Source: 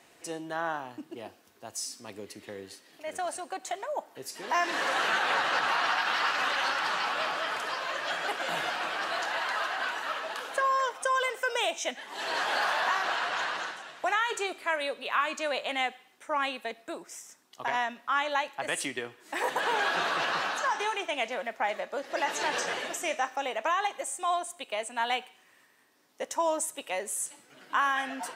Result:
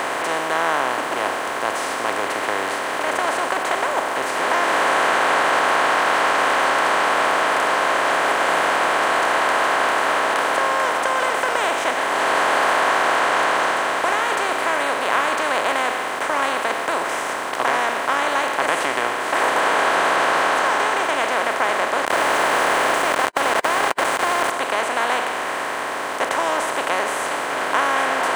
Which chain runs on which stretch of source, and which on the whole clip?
0:22.05–0:24.50: bass and treble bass +2 dB, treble −3 dB + downward compressor, threshold −33 dBFS + log-companded quantiser 2 bits
whole clip: compressor on every frequency bin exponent 0.2; high-pass filter 62 Hz; high-shelf EQ 4,100 Hz −9.5 dB

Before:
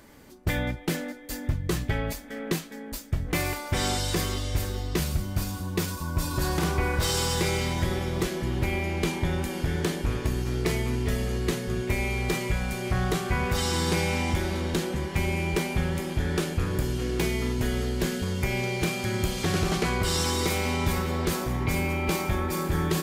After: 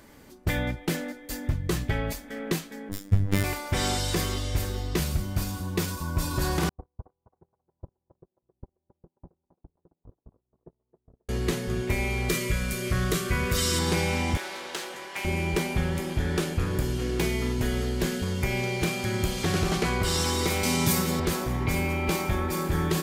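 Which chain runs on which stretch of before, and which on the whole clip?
0:02.89–0:03.44: lower of the sound and its delayed copy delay 0.57 ms + phases set to zero 98.7 Hz + low-shelf EQ 480 Hz +9 dB
0:06.69–0:11.29: Butterworth low-pass 1,000 Hz + noise gate −21 dBFS, range −56 dB + feedback echo with a high-pass in the loop 268 ms, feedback 29%, high-pass 460 Hz, level −8 dB
0:12.29–0:13.79: Butterworth band-reject 830 Hz, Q 2.6 + high-shelf EQ 5,400 Hz +7.5 dB
0:14.37–0:15.25: high-pass filter 690 Hz + highs frequency-modulated by the lows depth 0.16 ms
0:20.63–0:21.20: high-pass filter 120 Hz 24 dB per octave + bass and treble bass +7 dB, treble +12 dB
whole clip: no processing

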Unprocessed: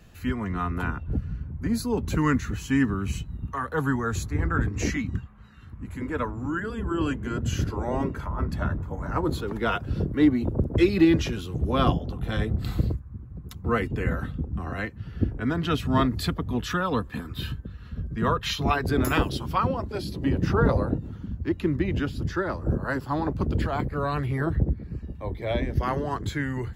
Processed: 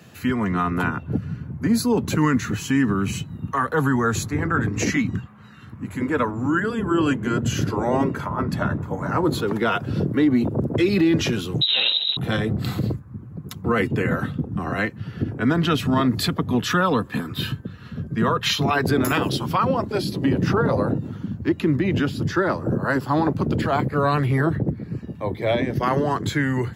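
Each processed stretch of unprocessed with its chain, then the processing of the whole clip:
0:11.61–0:12.17: lower of the sound and its delayed copy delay 0.91 ms + downward compressor 4 to 1, threshold −25 dBFS + voice inversion scrambler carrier 3,900 Hz
whole clip: brickwall limiter −18.5 dBFS; high-pass filter 110 Hz 24 dB per octave; level +8 dB

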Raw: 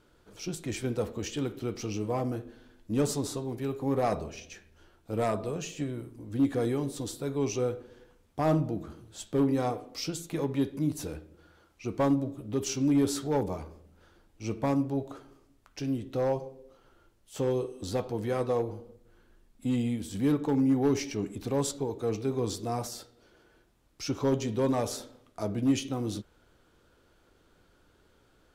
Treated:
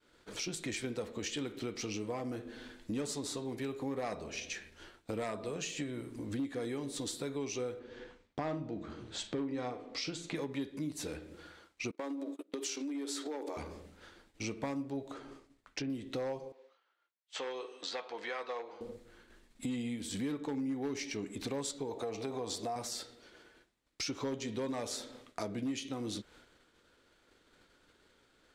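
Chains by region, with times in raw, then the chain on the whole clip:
0:07.79–0:10.35: high-frequency loss of the air 100 metres + double-tracking delay 40 ms −13 dB
0:11.91–0:13.57: elliptic high-pass filter 280 Hz + downward compressor 5 to 1, threshold −34 dBFS + noise gate −44 dBFS, range −25 dB
0:15.14–0:15.90: treble cut that deepens with the level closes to 2,200 Hz, closed at −32.5 dBFS + high-shelf EQ 2,300 Hz −4.5 dB
0:16.52–0:18.81: high-pass filter 860 Hz + high-frequency loss of the air 150 metres
0:21.91–0:22.76: drawn EQ curve 370 Hz 0 dB, 710 Hz +13 dB, 1,400 Hz +2 dB + downward compressor 2 to 1, threshold −31 dBFS
whole clip: downward expander −55 dBFS; graphic EQ with 10 bands 250 Hz +6 dB, 500 Hz +5 dB, 1,000 Hz +4 dB, 2,000 Hz +11 dB, 4,000 Hz +9 dB, 8,000 Hz +9 dB; downward compressor 4 to 1, threshold −38 dBFS

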